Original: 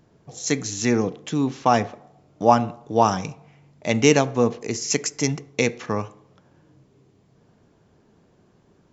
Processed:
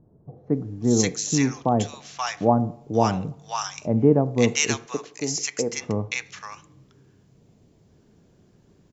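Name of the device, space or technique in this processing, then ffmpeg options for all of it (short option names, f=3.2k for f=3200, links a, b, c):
smiley-face EQ: -filter_complex "[0:a]asettb=1/sr,asplit=3[a][b][c];[a]atrim=end=4.854[d];[b]atrim=start=4.85:end=5.73,asetpts=PTS-STARTPTS,afade=t=in:d=0.004:c=qsin,afade=t=out:st=0.876:d=0.004:c=qsin,bass=f=250:g=-14,treble=f=4k:g=-8[e];[c]atrim=start=5.726[f];[d][e]acrossfade=d=0.004:c1=hsin:c2=qsin[g];[g][f]acrossfade=d=0.004:c1=qsin:c2=hsin,lowshelf=f=170:g=4.5,equalizer=f=1.2k:t=o:w=2.8:g=-3,highshelf=f=6.9k:g=7,acrossover=split=980[h][i];[i]adelay=530[j];[h][j]amix=inputs=2:normalize=0"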